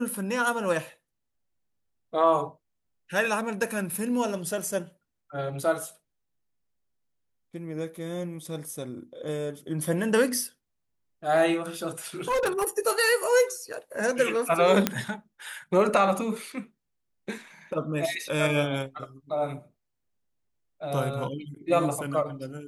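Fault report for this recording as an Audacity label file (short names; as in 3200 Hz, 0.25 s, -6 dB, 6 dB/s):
12.280000	12.690000	clipped -21.5 dBFS
14.870000	14.870000	pop -6 dBFS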